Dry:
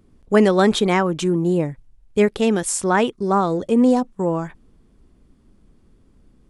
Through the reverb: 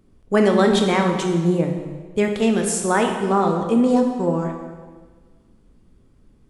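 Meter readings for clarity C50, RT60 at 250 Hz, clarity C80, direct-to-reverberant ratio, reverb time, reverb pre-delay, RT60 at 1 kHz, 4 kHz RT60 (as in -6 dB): 5.0 dB, 1.6 s, 6.5 dB, 2.5 dB, 1.5 s, 17 ms, 1.5 s, 1.3 s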